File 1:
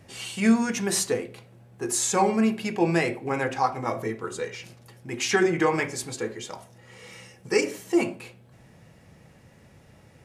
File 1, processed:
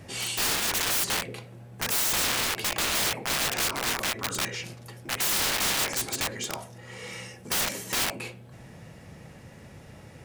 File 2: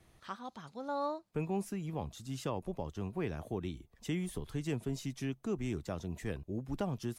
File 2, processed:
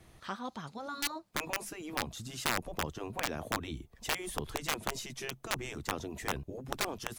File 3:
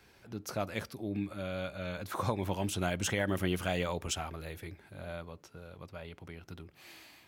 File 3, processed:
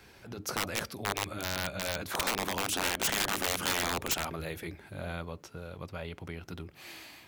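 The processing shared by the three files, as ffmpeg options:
-af "aeval=exprs='(mod(21.1*val(0)+1,2)-1)/21.1':c=same,afftfilt=real='re*lt(hypot(re,im),0.0631)':imag='im*lt(hypot(re,im),0.0631)':win_size=1024:overlap=0.75,volume=2"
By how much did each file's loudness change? -0.5 LU, +2.0 LU, +3.0 LU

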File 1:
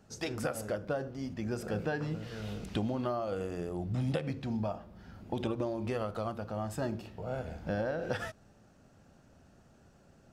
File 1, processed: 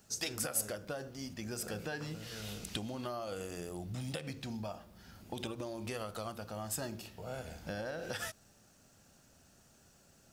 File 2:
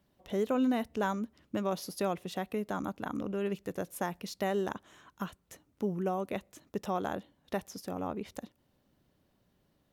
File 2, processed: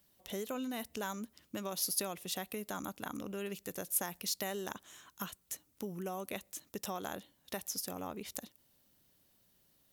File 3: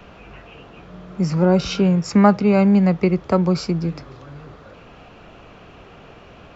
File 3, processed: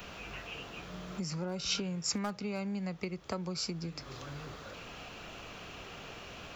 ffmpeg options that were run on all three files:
-af "volume=2.11,asoftclip=hard,volume=0.473,acompressor=threshold=0.0282:ratio=5,crystalizer=i=6:c=0,volume=0.501"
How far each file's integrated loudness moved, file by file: -4.5 LU, -4.5 LU, -21.0 LU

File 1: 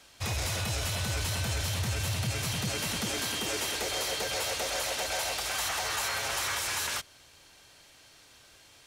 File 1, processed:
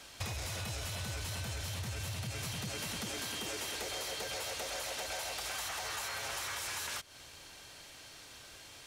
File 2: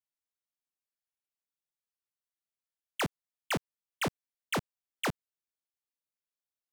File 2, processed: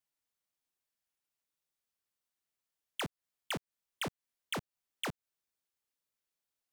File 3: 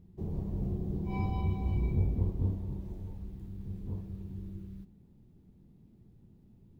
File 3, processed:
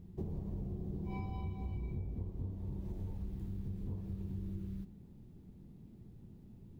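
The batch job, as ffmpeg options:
-af "acompressor=threshold=0.01:ratio=16,volume=1.58"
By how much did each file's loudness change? -7.5 LU, -5.5 LU, -7.0 LU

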